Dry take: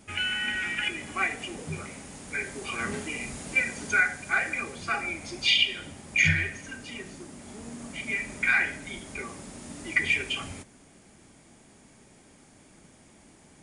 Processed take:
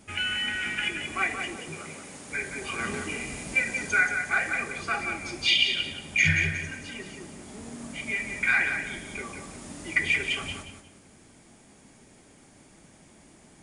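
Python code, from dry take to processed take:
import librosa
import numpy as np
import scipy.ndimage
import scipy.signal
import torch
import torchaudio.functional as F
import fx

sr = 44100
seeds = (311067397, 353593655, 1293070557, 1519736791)

p1 = fx.highpass(x, sr, hz=fx.line((1.55, 460.0), (2.31, 130.0)), slope=6, at=(1.55, 2.31), fade=0.02)
y = p1 + fx.echo_feedback(p1, sr, ms=179, feedback_pct=27, wet_db=-7.0, dry=0)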